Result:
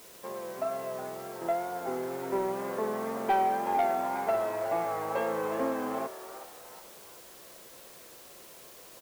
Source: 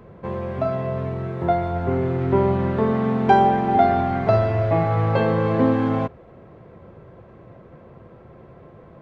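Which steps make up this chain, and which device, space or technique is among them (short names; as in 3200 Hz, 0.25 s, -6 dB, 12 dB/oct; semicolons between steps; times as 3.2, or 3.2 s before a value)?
HPF 120 Hz; tape answering machine (BPF 370–2800 Hz; soft clip -12 dBFS, distortion -17 dB; wow and flutter; white noise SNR 19 dB); frequency-shifting echo 0.368 s, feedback 40%, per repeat +120 Hz, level -12.5 dB; gain -7.5 dB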